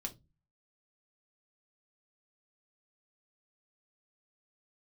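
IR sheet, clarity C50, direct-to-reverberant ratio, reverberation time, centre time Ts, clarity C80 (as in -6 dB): 17.5 dB, 2.0 dB, 0.20 s, 7 ms, 27.5 dB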